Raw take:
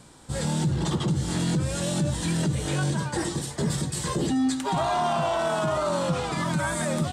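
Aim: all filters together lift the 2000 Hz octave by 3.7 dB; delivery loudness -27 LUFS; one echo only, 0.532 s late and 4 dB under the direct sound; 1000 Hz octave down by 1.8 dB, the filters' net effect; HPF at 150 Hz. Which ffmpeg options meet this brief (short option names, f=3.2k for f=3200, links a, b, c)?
-af "highpass=150,equalizer=f=1k:t=o:g=-4,equalizer=f=2k:t=o:g=6.5,aecho=1:1:532:0.631,volume=-1dB"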